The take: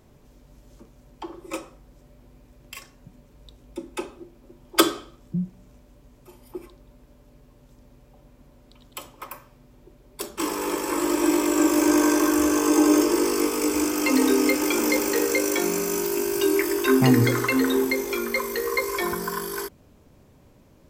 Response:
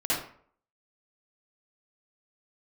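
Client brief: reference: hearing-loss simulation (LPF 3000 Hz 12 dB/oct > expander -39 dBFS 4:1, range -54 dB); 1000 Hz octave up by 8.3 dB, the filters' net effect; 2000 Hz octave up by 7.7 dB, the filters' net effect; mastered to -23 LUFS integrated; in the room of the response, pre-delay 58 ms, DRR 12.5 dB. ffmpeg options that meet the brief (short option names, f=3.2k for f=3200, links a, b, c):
-filter_complex "[0:a]equalizer=f=1k:t=o:g=7.5,equalizer=f=2k:t=o:g=8,asplit=2[a][b];[1:a]atrim=start_sample=2205,adelay=58[c];[b][c]afir=irnorm=-1:irlink=0,volume=-22.5dB[d];[a][d]amix=inputs=2:normalize=0,lowpass=3k,agate=range=-54dB:threshold=-39dB:ratio=4,volume=-3.5dB"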